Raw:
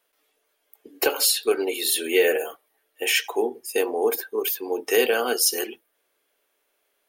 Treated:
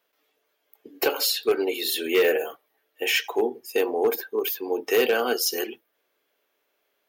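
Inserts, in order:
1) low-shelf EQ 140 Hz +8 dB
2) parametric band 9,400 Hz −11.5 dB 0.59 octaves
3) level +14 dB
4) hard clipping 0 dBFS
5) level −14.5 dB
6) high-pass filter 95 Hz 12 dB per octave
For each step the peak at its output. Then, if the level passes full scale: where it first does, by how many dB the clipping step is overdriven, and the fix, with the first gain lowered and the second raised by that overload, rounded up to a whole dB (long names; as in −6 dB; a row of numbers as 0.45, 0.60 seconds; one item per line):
−7.0, −8.0, +6.0, 0.0, −14.5, −12.0 dBFS
step 3, 6.0 dB
step 3 +8 dB, step 5 −8.5 dB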